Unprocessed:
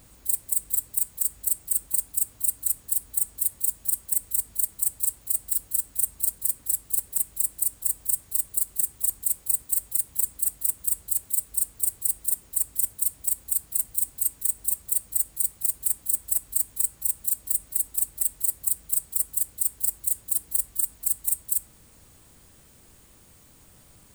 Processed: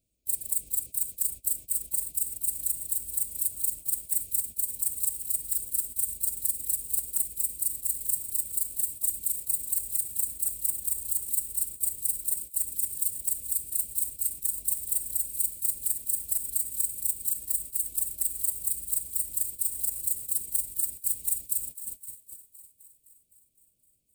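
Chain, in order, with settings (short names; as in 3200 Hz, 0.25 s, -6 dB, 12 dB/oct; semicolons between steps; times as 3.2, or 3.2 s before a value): regenerating reverse delay 0.379 s, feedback 76%, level -14 dB; Chebyshev band-stop 660–2300 Hz, order 4; gate -36 dBFS, range -25 dB; on a send: thinning echo 0.257 s, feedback 68%, level -17 dB; on the sum: limiter -13 dBFS, peak gain reduction 6 dB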